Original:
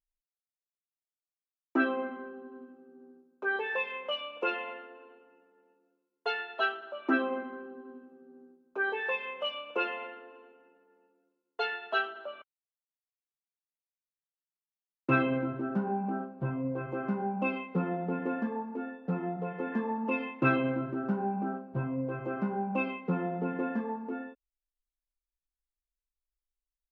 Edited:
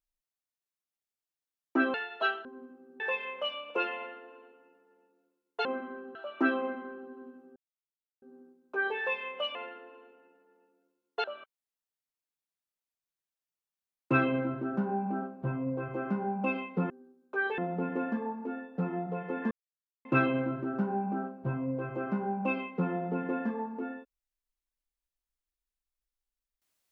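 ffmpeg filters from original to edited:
-filter_complex "[0:a]asplit=13[s0][s1][s2][s3][s4][s5][s6][s7][s8][s9][s10][s11][s12];[s0]atrim=end=1.942[s13];[s1]atrim=start=6.318:end=6.832[s14];[s2]atrim=start=2.438:end=2.992[s15];[s3]atrim=start=3.668:end=6.322[s16];[s4]atrim=start=1.938:end=2.442[s17];[s5]atrim=start=6.828:end=8.24,asetpts=PTS-STARTPTS,afade=t=out:st=1.408:d=0.004:c=hsin,apad=pad_dur=0.66[s18];[s6]atrim=start=8.24:end=9.572,asetpts=PTS-STARTPTS,afade=t=in:d=0.004:c=hsin[s19];[s7]atrim=start=9.958:end=11.652[s20];[s8]atrim=start=12.218:end=17.882[s21];[s9]atrim=start=2.988:end=3.672[s22];[s10]atrim=start=17.878:end=19.81,asetpts=PTS-STARTPTS,afade=t=out:st=1.928:d=0.004:c=hsin[s23];[s11]atrim=start=19.81:end=20.35,asetpts=PTS-STARTPTS,volume=0[s24];[s12]atrim=start=20.35,asetpts=PTS-STARTPTS,afade=t=in:d=0.004:c=hsin[s25];[s13][s14]acrossfade=d=0.004:c1=hsin:c2=hsin[s26];[s26][s15]acrossfade=d=0.004:c1=hsin:c2=hsin[s27];[s27][s16]acrossfade=d=0.004:c1=hsin:c2=hsin[s28];[s28][s17]acrossfade=d=0.004:c1=hsin:c2=hsin[s29];[s18][s19]concat=n=2:v=0:a=1[s30];[s29][s30]acrossfade=d=0.004:c1=hsin:c2=hsin[s31];[s31][s20]acrossfade=d=0.004:c1=hsin:c2=hsin[s32];[s32][s21]acrossfade=d=0.004:c1=hsin:c2=hsin[s33];[s33][s22]acrossfade=d=0.004:c1=hsin:c2=hsin[s34];[s23][s24][s25]concat=n=3:v=0:a=1[s35];[s34][s35]acrossfade=d=0.004:c1=hsin:c2=hsin"

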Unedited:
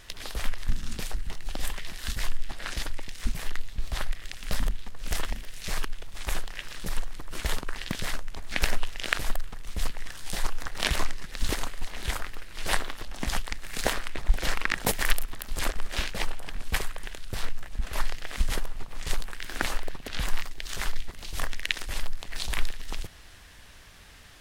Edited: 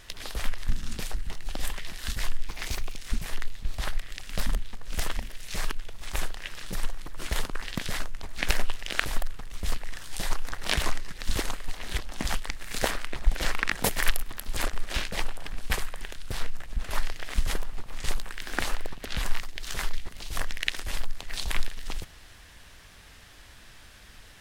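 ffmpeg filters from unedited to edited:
-filter_complex "[0:a]asplit=4[s0][s1][s2][s3];[s0]atrim=end=2.474[s4];[s1]atrim=start=2.47:end=3.1,asetpts=PTS-STARTPTS,asetrate=56007,aresample=44100,atrim=end_sample=21876,asetpts=PTS-STARTPTS[s5];[s2]atrim=start=3.096:end=12.112[s6];[s3]atrim=start=12.998[s7];[s4][s5]acrossfade=d=0.004:c1=hsin:c2=hsin[s8];[s8][s6]acrossfade=d=0.004:c1=hsin:c2=hsin[s9];[s9][s7]acrossfade=d=0.004:c1=hsin:c2=hsin"

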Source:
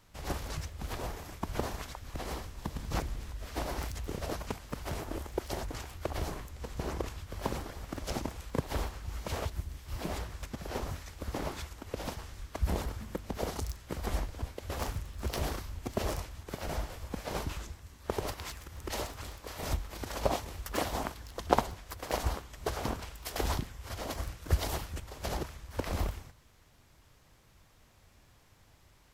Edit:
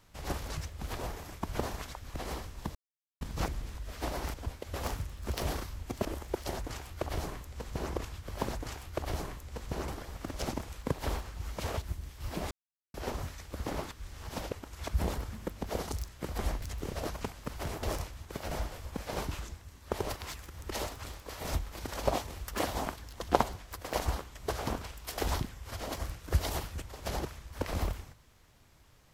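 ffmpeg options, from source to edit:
-filter_complex "[0:a]asplit=12[s0][s1][s2][s3][s4][s5][s6][s7][s8][s9][s10][s11];[s0]atrim=end=2.75,asetpts=PTS-STARTPTS,afade=t=out:st=2.746:d=0.004:c=hsin,apad=pad_dur=0.46[s12];[s1]atrim=start=2.75:end=3.882,asetpts=PTS-STARTPTS,afade=t=in:d=0.004:c=hsin[s13];[s2]atrim=start=14.298:end=16.012[s14];[s3]atrim=start=5.088:end=7.562[s15];[s4]atrim=start=5.598:end=6.962[s16];[s5]atrim=start=7.558:end=10.19,asetpts=PTS-STARTPTS,afade=t=out:st=2.628:d=0.004:c=hsin[s17];[s6]atrim=start=10.19:end=10.62,asetpts=PTS-STARTPTS,volume=0[s18];[s7]atrim=start=10.62:end=11.592,asetpts=PTS-STARTPTS,afade=t=in:d=0.004:c=hsin[s19];[s8]atrim=start=11.588:end=12.552,asetpts=PTS-STARTPTS,areverse[s20];[s9]atrim=start=12.548:end=14.302[s21];[s10]atrim=start=3.878:end=5.092[s22];[s11]atrim=start=16.008[s23];[s12][s13]concat=n=2:v=0:a=1[s24];[s24][s14]acrossfade=d=0.004:c1=hsin:c2=hsin[s25];[s25][s15]acrossfade=d=0.004:c1=hsin:c2=hsin[s26];[s26][s16]acrossfade=d=0.004:c1=hsin:c2=hsin[s27];[s17][s18][s19]concat=n=3:v=0:a=1[s28];[s27][s28]acrossfade=d=0.004:c1=hsin:c2=hsin[s29];[s29][s20]acrossfade=d=0.004:c1=hsin:c2=hsin[s30];[s30][s21]acrossfade=d=0.004:c1=hsin:c2=hsin[s31];[s31][s22]acrossfade=d=0.004:c1=hsin:c2=hsin[s32];[s32][s23]acrossfade=d=0.004:c1=hsin:c2=hsin"

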